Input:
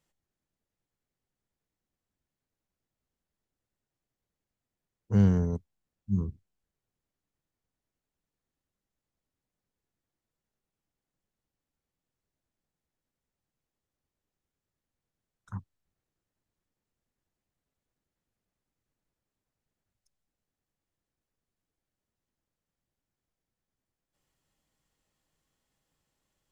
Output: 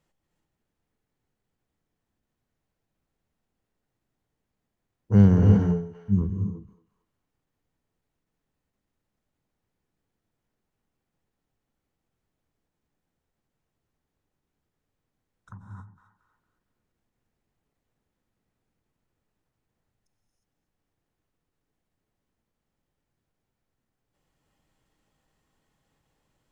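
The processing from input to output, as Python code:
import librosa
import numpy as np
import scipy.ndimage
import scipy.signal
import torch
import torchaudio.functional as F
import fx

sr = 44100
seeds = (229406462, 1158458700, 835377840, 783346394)

y = fx.high_shelf(x, sr, hz=2900.0, db=-8.5)
y = fx.echo_banded(y, sr, ms=229, feedback_pct=47, hz=2500.0, wet_db=-10.0)
y = fx.rev_gated(y, sr, seeds[0], gate_ms=380, shape='rising', drr_db=1.0)
y = fx.end_taper(y, sr, db_per_s=110.0)
y = y * 10.0 ** (6.0 / 20.0)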